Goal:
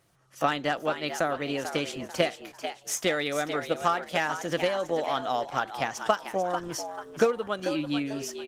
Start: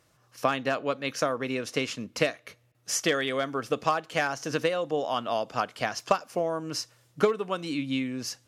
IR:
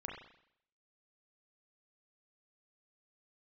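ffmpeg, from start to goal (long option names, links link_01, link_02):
-filter_complex "[0:a]asetrate=48091,aresample=44100,atempo=0.917004,asplit=2[link_01][link_02];[link_02]asplit=4[link_03][link_04][link_05][link_06];[link_03]adelay=442,afreqshift=94,volume=-9dB[link_07];[link_04]adelay=884,afreqshift=188,volume=-18.4dB[link_08];[link_05]adelay=1326,afreqshift=282,volume=-27.7dB[link_09];[link_06]adelay=1768,afreqshift=376,volume=-37.1dB[link_10];[link_07][link_08][link_09][link_10]amix=inputs=4:normalize=0[link_11];[link_01][link_11]amix=inputs=2:normalize=0" -ar 48000 -c:a libopus -b:a 24k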